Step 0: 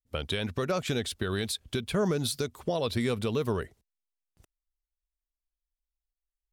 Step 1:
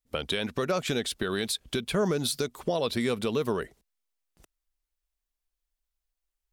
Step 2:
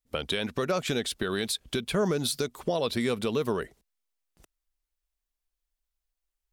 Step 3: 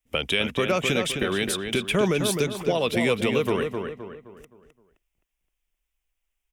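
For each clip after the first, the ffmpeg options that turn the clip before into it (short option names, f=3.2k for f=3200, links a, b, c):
-filter_complex "[0:a]equalizer=f=90:t=o:w=0.84:g=-13.5,asplit=2[a][b];[b]acompressor=threshold=-37dB:ratio=6,volume=-1.5dB[c];[a][c]amix=inputs=2:normalize=0"
-af anull
-filter_complex "[0:a]asplit=2[a][b];[b]adelay=260,lowpass=f=2.8k:p=1,volume=-5.5dB,asplit=2[c][d];[d]adelay=260,lowpass=f=2.8k:p=1,volume=0.41,asplit=2[e][f];[f]adelay=260,lowpass=f=2.8k:p=1,volume=0.41,asplit=2[g][h];[h]adelay=260,lowpass=f=2.8k:p=1,volume=0.41,asplit=2[i][j];[j]adelay=260,lowpass=f=2.8k:p=1,volume=0.41[k];[a][c][e][g][i][k]amix=inputs=6:normalize=0,acrossover=split=260|1600|3200[l][m][n][o];[n]aexciter=amount=4.6:drive=3.7:freq=2.1k[p];[l][m][p][o]amix=inputs=4:normalize=0,volume=3.5dB"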